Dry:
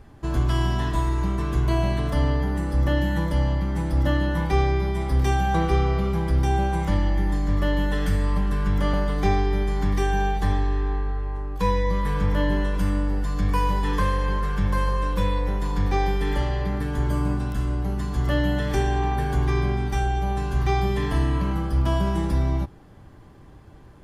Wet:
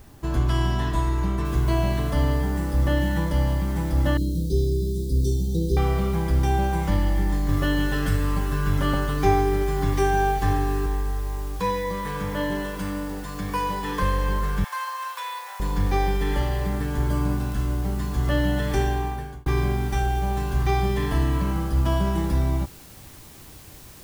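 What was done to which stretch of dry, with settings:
0:01.45: noise floor change −59 dB −48 dB
0:04.17–0:05.77: Chebyshev band-stop filter 470–3,900 Hz, order 4
0:07.48–0:10.86: comb filter 7.5 ms, depth 81%
0:11.60–0:14.02: high-pass filter 210 Hz 6 dB per octave
0:14.64–0:15.60: Butterworth high-pass 760 Hz
0:18.84–0:19.46: fade out

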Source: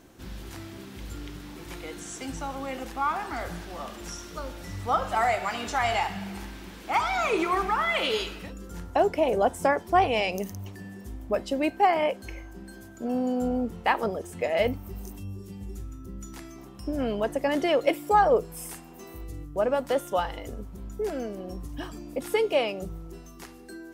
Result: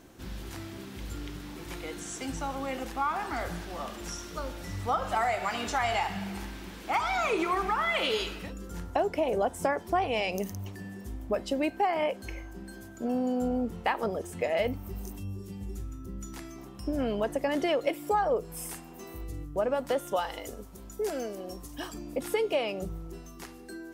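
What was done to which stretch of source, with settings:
0:20.16–0:21.94: bass and treble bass −9 dB, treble +7 dB
whole clip: downward compressor 3 to 1, threshold −25 dBFS

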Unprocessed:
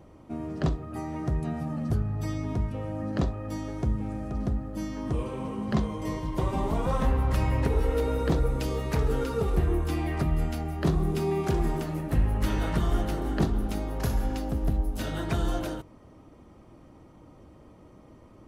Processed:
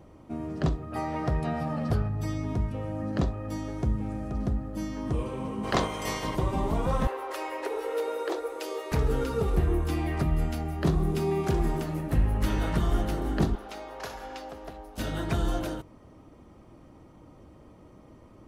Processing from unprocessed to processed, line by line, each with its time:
0:00.92–0:02.08: gain on a spectral selection 430–5,600 Hz +7 dB
0:05.63–0:06.35: ceiling on every frequency bin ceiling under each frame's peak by 22 dB
0:07.07–0:08.92: elliptic high-pass filter 340 Hz
0:13.55–0:14.98: three-way crossover with the lows and the highs turned down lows −23 dB, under 440 Hz, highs −12 dB, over 6,500 Hz

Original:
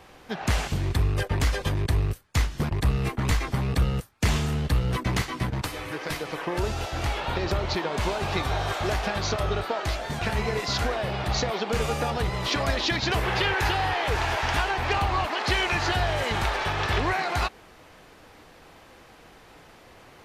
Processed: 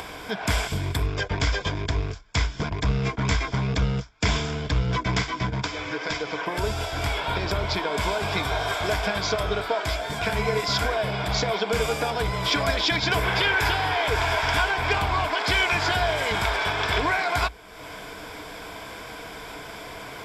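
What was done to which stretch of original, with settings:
0:01.06–0:06.46: bad sample-rate conversion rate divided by 3×, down none, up filtered
whole clip: EQ curve with evenly spaced ripples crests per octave 1.7, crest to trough 9 dB; upward compression, threshold −28 dBFS; low-shelf EQ 420 Hz −5 dB; level +2.5 dB

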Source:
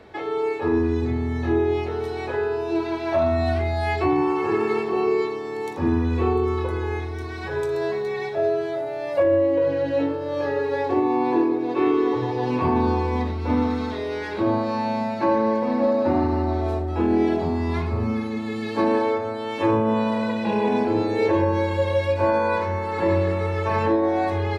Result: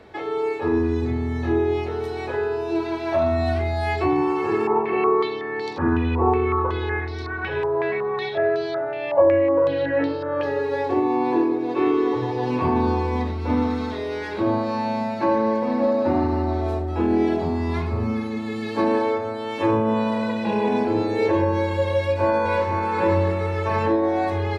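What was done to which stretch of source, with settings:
0:04.67–0:10.43: low-pass on a step sequencer 5.4 Hz 930–4,500 Hz
0:21.96–0:22.81: delay throw 490 ms, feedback 10%, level −5.5 dB

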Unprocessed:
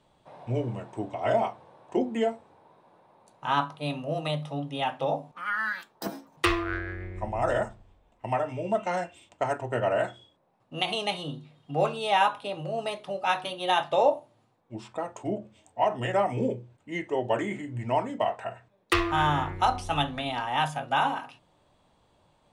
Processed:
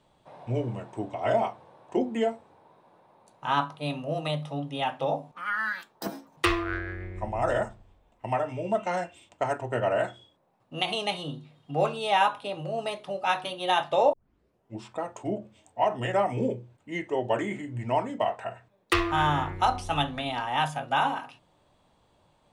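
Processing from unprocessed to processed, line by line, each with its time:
0:14.13: tape start 0.63 s

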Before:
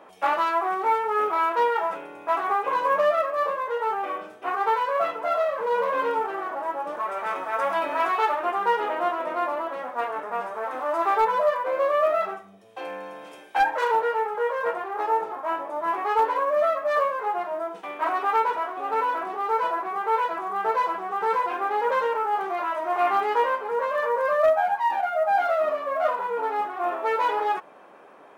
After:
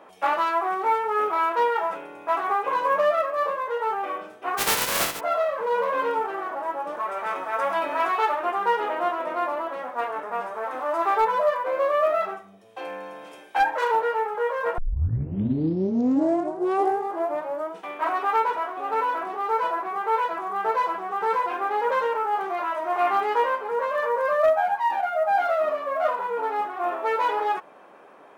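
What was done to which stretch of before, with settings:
0:04.57–0:05.19: compressing power law on the bin magnitudes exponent 0.25
0:14.78: tape start 3.04 s

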